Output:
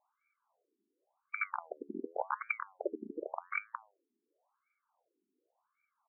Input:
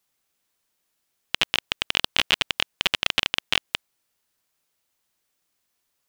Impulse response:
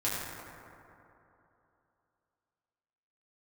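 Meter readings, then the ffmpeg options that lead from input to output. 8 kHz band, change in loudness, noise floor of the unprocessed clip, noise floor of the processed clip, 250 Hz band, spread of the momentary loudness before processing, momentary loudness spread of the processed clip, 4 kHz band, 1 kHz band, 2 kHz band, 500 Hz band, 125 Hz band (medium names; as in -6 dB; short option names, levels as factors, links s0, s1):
under -40 dB, -15.5 dB, -76 dBFS, under -85 dBFS, -4.0 dB, 6 LU, 8 LU, under -40 dB, -5.0 dB, -13.5 dB, -2.5 dB, under -20 dB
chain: -af "aresample=11025,asoftclip=type=tanh:threshold=0.251,aresample=44100,asuperstop=centerf=1900:order=4:qfactor=1.1,flanger=delay=8.4:depth=5.8:regen=83:speed=0.8:shape=triangular,aexciter=amount=7.5:drive=9.3:freq=2100,afftfilt=real='re*between(b*sr/1024,290*pow(1700/290,0.5+0.5*sin(2*PI*0.9*pts/sr))/1.41,290*pow(1700/290,0.5+0.5*sin(2*PI*0.9*pts/sr))*1.41)':imag='im*between(b*sr/1024,290*pow(1700/290,0.5+0.5*sin(2*PI*0.9*pts/sr))/1.41,290*pow(1700/290,0.5+0.5*sin(2*PI*0.9*pts/sr))*1.41)':win_size=1024:overlap=0.75,volume=6.31"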